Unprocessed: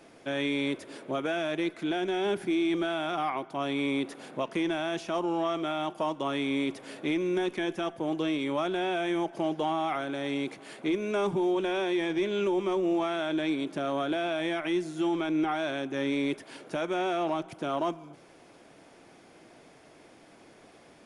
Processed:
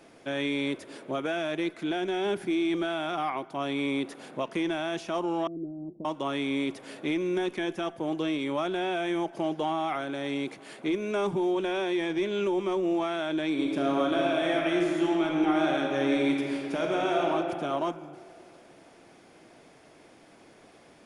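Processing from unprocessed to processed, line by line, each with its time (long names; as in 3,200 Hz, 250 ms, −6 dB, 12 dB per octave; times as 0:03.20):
0:05.47–0:06.05: inverse Chebyshev low-pass filter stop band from 2,200 Hz, stop band 80 dB
0:13.49–0:17.29: thrown reverb, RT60 2.6 s, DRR −0.5 dB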